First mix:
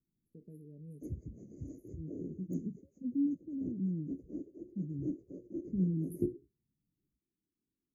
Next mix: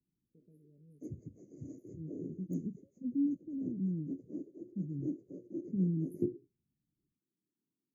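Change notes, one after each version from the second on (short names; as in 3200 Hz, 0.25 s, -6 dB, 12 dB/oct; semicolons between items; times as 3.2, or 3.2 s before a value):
first voice -11.0 dB; background: add HPF 110 Hz 24 dB/oct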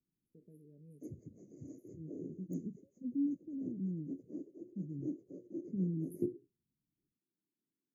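first voice +7.0 dB; master: add low shelf 240 Hz -6 dB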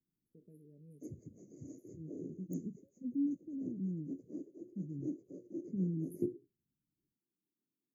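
background: add high shelf 5100 Hz +8 dB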